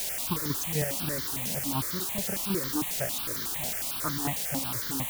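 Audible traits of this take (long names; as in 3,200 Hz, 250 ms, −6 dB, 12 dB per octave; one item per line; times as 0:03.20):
chopped level 4 Hz, depth 60%, duty 35%
a quantiser's noise floor 6 bits, dither triangular
notches that jump at a steady rate 11 Hz 320–2,600 Hz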